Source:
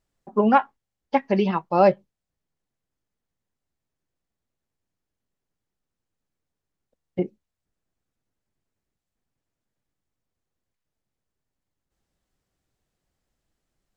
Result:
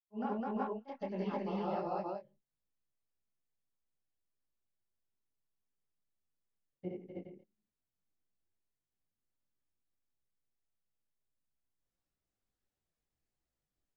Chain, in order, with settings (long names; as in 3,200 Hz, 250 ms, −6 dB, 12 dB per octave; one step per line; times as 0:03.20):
dynamic equaliser 2,100 Hz, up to −6 dB, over −34 dBFS, Q 1
brickwall limiter −13 dBFS, peak gain reduction 6.5 dB
granular cloud 262 ms, grains 30 per second, spray 346 ms, pitch spread up and down by 0 semitones
micro pitch shift up and down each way 54 cents
level −1.5 dB